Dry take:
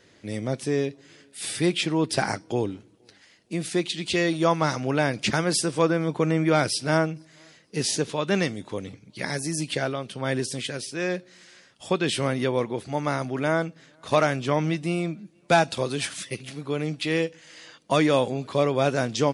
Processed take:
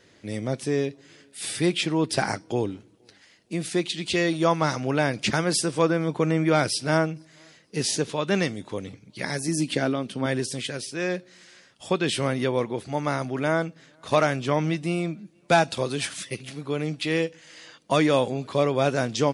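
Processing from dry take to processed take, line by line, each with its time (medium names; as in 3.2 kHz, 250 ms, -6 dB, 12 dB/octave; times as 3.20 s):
9.48–10.26 s: peaking EQ 260 Hz +9 dB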